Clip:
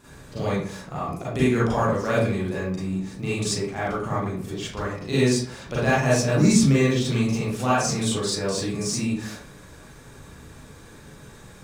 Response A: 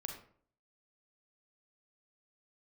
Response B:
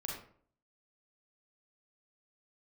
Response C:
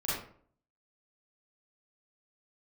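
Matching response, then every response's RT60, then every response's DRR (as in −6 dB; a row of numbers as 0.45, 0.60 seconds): C; 0.55, 0.55, 0.55 seconds; 2.5, −2.5, −10.0 decibels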